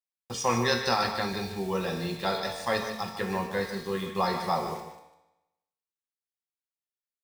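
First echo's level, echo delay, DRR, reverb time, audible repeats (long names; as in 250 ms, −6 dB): −10.0 dB, 149 ms, 1.5 dB, 0.95 s, 1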